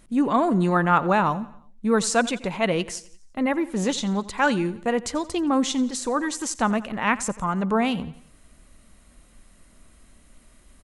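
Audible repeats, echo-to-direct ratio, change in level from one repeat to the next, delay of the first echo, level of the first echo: 3, -18.0 dB, -6.0 dB, 87 ms, -19.0 dB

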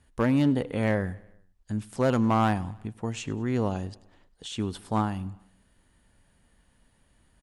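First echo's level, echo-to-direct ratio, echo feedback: -22.5 dB, -21.0 dB, 55%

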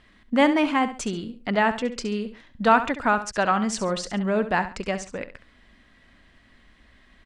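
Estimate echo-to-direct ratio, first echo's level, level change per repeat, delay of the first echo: -11.5 dB, -12.0 dB, -10.0 dB, 68 ms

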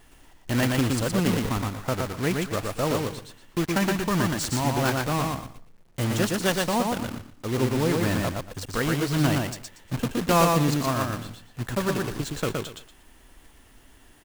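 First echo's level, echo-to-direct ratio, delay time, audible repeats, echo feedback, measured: -3.0 dB, -3.0 dB, 118 ms, 3, 23%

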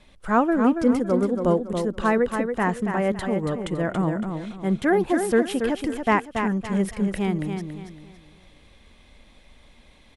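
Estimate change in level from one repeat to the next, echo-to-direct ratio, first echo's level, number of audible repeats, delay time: -10.0 dB, -6.0 dB, -6.5 dB, 3, 280 ms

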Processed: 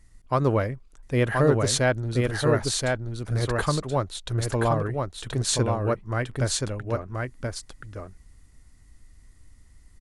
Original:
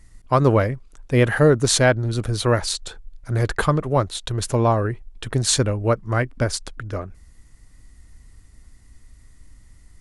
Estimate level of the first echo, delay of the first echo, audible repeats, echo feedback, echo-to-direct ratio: -3.5 dB, 1028 ms, 1, no regular repeats, -3.5 dB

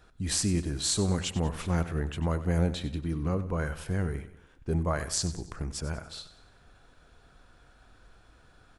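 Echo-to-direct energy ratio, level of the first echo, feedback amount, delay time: -13.0 dB, -14.0 dB, 46%, 95 ms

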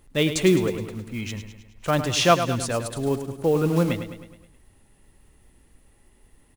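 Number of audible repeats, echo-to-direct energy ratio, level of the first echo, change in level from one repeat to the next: 5, -8.5 dB, -10.0 dB, -5.5 dB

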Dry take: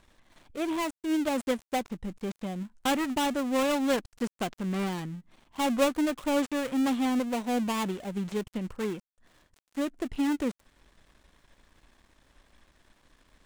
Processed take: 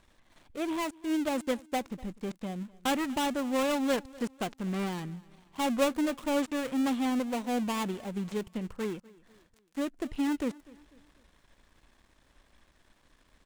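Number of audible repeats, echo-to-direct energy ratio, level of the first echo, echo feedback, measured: 2, -21.5 dB, -22.5 dB, 44%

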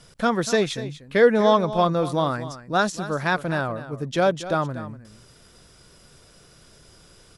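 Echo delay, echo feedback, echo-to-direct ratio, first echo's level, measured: 242 ms, no regular repeats, -14.0 dB, -14.0 dB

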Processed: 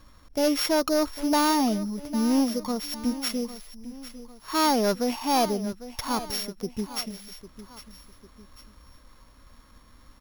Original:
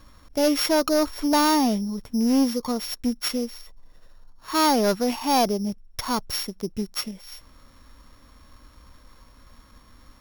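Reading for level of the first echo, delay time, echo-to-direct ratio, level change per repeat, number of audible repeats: -14.5 dB, 801 ms, -13.5 dB, -7.0 dB, 2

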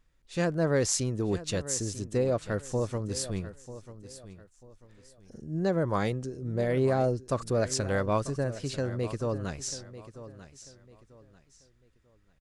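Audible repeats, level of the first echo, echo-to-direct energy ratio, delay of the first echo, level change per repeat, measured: 2, -14.5 dB, -14.0 dB, 942 ms, -10.5 dB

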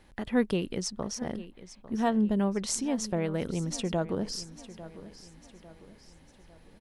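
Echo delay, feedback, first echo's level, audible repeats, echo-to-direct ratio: 850 ms, 44%, -16.0 dB, 3, -15.0 dB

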